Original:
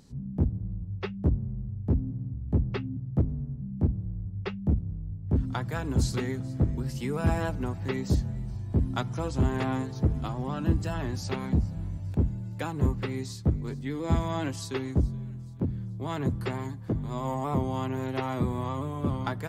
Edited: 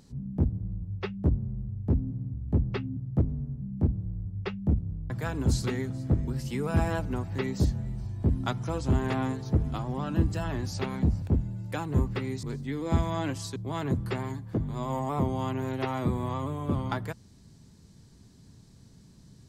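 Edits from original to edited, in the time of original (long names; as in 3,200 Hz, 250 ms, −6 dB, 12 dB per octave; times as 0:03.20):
0:05.10–0:05.60: remove
0:11.72–0:12.09: remove
0:13.30–0:13.61: remove
0:14.74–0:15.91: remove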